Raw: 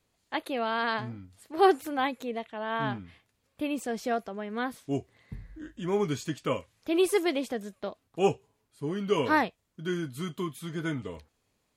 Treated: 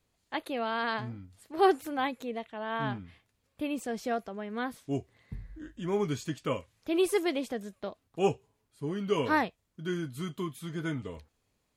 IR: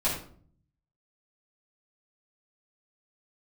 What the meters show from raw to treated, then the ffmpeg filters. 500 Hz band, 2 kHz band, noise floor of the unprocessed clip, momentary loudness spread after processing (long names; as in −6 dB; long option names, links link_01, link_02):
−2.0 dB, −2.5 dB, −76 dBFS, 15 LU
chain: -af "lowshelf=frequency=110:gain=5,volume=-2.5dB"